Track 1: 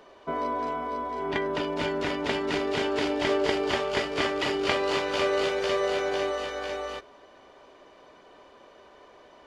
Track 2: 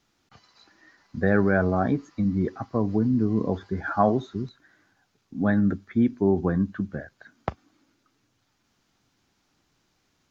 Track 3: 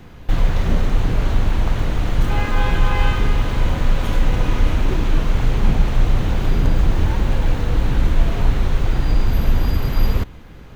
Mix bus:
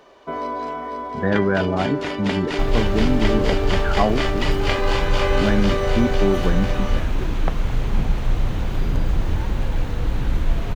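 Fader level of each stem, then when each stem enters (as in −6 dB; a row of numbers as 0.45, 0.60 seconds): +2.5, +1.0, −4.5 decibels; 0.00, 0.00, 2.30 seconds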